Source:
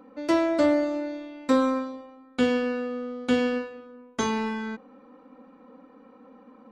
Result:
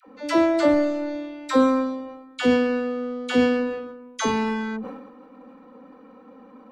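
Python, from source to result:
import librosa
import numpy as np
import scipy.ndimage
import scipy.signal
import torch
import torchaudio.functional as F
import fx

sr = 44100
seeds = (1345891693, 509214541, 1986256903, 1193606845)

y = fx.halfwave_gain(x, sr, db=-3.0, at=(0.66, 1.08))
y = fx.dispersion(y, sr, late='lows', ms=76.0, hz=610.0)
y = fx.sustainer(y, sr, db_per_s=52.0)
y = y * librosa.db_to_amplitude(3.5)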